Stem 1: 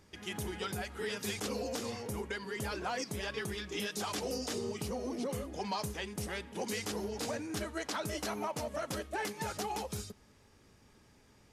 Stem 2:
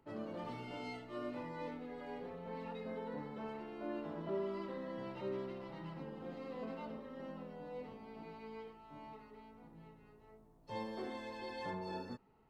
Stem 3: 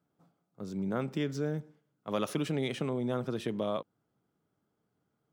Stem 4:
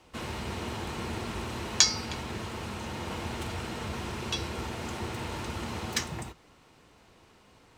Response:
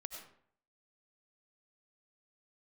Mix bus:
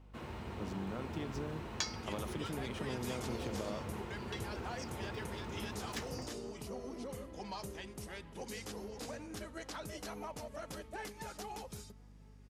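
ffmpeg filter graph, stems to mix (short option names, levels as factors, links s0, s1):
-filter_complex "[0:a]adelay=1800,volume=0.398[s0];[1:a]adelay=2400,volume=0.282[s1];[2:a]acompressor=threshold=0.0158:ratio=6,volume=0.75[s2];[3:a]equalizer=f=7300:t=o:w=2.6:g=-10.5,volume=0.398[s3];[s0][s1][s2][s3]amix=inputs=4:normalize=0,aeval=exprs='val(0)+0.00158*(sin(2*PI*50*n/s)+sin(2*PI*2*50*n/s)/2+sin(2*PI*3*50*n/s)/3+sin(2*PI*4*50*n/s)/4+sin(2*PI*5*50*n/s)/5)':c=same"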